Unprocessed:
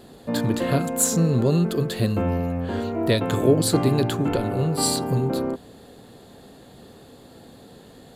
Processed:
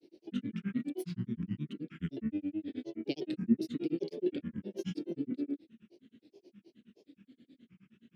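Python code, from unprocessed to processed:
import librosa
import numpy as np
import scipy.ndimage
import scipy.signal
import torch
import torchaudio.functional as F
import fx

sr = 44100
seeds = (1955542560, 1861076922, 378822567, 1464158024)

y = fx.vowel_filter(x, sr, vowel='i')
y = fx.granulator(y, sr, seeds[0], grain_ms=100.0, per_s=9.5, spray_ms=12.0, spread_st=7)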